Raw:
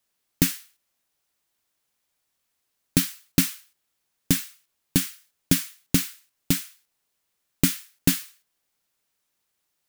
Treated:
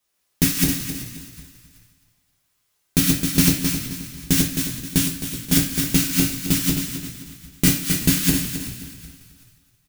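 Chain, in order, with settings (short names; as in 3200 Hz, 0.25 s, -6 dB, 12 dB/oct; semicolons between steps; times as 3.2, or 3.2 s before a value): regenerating reverse delay 0.132 s, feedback 54%, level -1 dB; 5–5.52 compressor 3:1, threshold -26 dBFS, peak gain reduction 9 dB; on a send: frequency-shifting echo 0.378 s, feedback 36%, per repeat -53 Hz, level -16 dB; on the sum: two-slope reverb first 0.38 s, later 1.5 s, from -16 dB, DRR -2 dB; gain -1 dB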